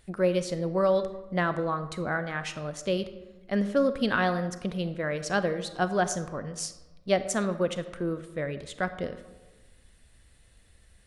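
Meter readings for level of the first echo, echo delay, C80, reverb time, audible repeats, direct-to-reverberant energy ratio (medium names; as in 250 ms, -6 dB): no echo, no echo, 14.0 dB, 1.2 s, no echo, 11.0 dB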